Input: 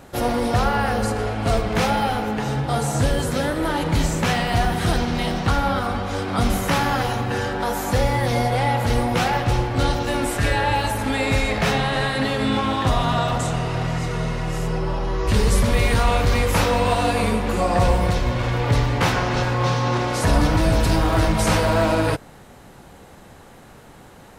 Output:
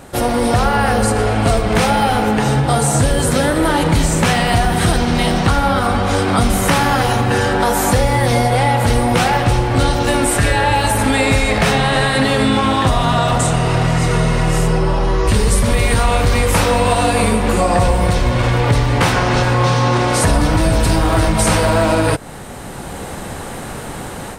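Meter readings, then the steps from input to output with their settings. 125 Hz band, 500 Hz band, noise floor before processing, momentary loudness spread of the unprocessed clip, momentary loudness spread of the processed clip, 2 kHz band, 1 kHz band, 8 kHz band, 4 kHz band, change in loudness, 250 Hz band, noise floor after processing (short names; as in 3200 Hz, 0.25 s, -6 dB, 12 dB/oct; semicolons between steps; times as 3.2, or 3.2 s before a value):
+6.0 dB, +6.0 dB, -45 dBFS, 5 LU, 3 LU, +6.5 dB, +6.0 dB, +10.0 dB, +6.0 dB, +6.0 dB, +6.5 dB, -28 dBFS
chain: AGC; bell 8800 Hz +9 dB 0.25 oct; compressor 3:1, threshold -19 dBFS, peak gain reduction 10 dB; gain +6 dB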